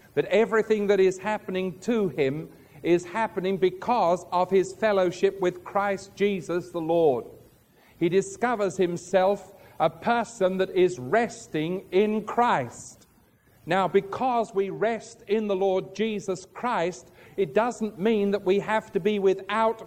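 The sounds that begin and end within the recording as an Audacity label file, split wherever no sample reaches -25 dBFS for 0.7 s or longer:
8.020000	12.640000	sound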